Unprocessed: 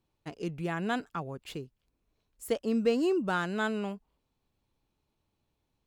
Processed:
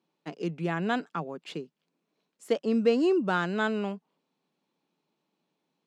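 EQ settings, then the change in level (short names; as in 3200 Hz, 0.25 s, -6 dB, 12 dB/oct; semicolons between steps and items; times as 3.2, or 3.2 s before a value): elliptic high-pass 160 Hz; LPF 6200 Hz 12 dB/oct; +3.5 dB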